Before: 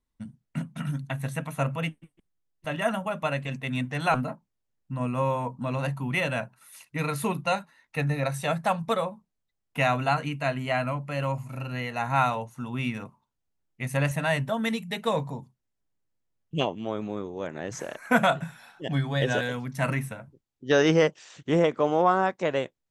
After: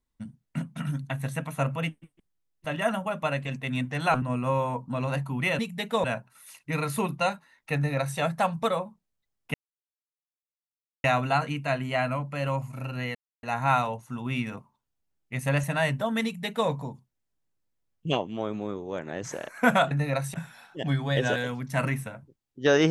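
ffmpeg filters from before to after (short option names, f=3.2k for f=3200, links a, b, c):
-filter_complex "[0:a]asplit=8[a][b][c][d][e][f][g][h];[a]atrim=end=4.222[i];[b]atrim=start=4.928:end=6.302[j];[c]atrim=start=14.718:end=15.172[k];[d]atrim=start=6.298:end=9.8,asetpts=PTS-STARTPTS,afade=t=out:st=3.498:d=0.004:c=hsin,apad=pad_dur=1.5[l];[e]atrim=start=9.8:end=11.91,asetpts=PTS-STARTPTS,afade=t=in:d=0.004:c=hsin,afade=t=out:st=2.106:d=0.004:c=hsin,apad=pad_dur=0.28[m];[f]atrim=start=11.91:end=18.392,asetpts=PTS-STARTPTS,afade=t=in:d=0.004:c=hsin[n];[g]atrim=start=8.008:end=8.442[o];[h]atrim=start=18.388[p];[i][j]acrossfade=d=0.004:c1=hsin:c2=hsin[q];[q][k]acrossfade=d=0.004:c1=hsin:c2=hsin[r];[l][m][n]concat=n=3:v=0:a=1[s];[r][s]acrossfade=d=0.004:c1=hsin:c2=hsin[t];[t][o]acrossfade=d=0.004:c1=hsin:c2=hsin[u];[u][p]acrossfade=d=0.004:c1=hsin:c2=hsin"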